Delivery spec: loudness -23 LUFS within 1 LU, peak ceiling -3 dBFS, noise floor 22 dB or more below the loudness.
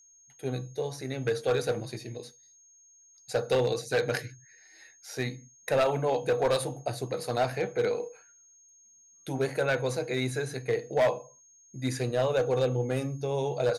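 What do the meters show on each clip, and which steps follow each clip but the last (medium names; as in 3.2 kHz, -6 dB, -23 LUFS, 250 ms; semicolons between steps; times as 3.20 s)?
clipped samples 1.1%; clipping level -19.5 dBFS; steady tone 6.5 kHz; tone level -56 dBFS; loudness -30.0 LUFS; peak level -19.5 dBFS; loudness target -23.0 LUFS
-> clip repair -19.5 dBFS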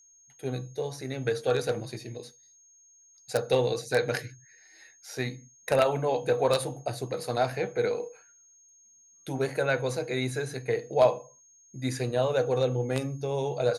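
clipped samples 0.0%; steady tone 6.5 kHz; tone level -56 dBFS
-> band-stop 6.5 kHz, Q 30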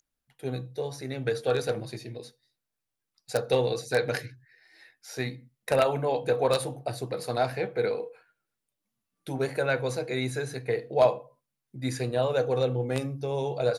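steady tone not found; loudness -29.0 LUFS; peak level -10.5 dBFS; loudness target -23.0 LUFS
-> trim +6 dB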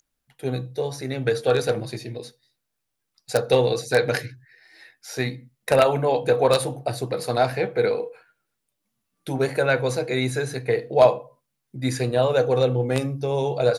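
loudness -23.0 LUFS; peak level -4.5 dBFS; noise floor -79 dBFS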